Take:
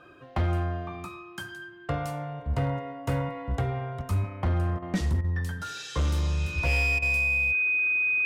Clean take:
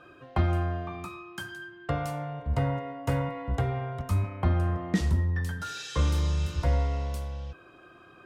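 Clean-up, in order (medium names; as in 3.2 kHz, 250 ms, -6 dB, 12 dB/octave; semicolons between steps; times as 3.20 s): clip repair -20.5 dBFS; band-stop 2.5 kHz, Q 30; interpolate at 4.79/5.21/6.99 s, 31 ms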